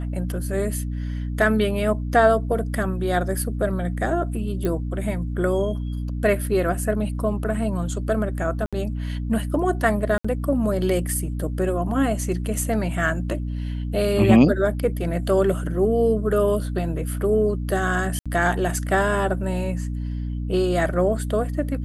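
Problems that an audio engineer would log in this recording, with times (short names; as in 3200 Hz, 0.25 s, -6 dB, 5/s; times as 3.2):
hum 60 Hz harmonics 5 -27 dBFS
4.65 pop -13 dBFS
8.66–8.73 gap 66 ms
10.18–10.24 gap 65 ms
18.19–18.26 gap 66 ms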